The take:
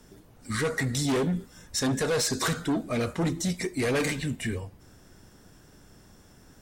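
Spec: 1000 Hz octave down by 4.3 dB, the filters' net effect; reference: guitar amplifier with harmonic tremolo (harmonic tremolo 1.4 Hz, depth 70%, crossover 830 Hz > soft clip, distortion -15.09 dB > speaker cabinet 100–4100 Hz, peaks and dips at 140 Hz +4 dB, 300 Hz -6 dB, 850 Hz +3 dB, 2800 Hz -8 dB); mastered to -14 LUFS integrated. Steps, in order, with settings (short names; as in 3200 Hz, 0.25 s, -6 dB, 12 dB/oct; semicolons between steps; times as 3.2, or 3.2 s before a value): bell 1000 Hz -7 dB; harmonic tremolo 1.4 Hz, depth 70%, crossover 830 Hz; soft clip -27.5 dBFS; speaker cabinet 100–4100 Hz, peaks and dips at 140 Hz +4 dB, 300 Hz -6 dB, 850 Hz +3 dB, 2800 Hz -8 dB; gain +22.5 dB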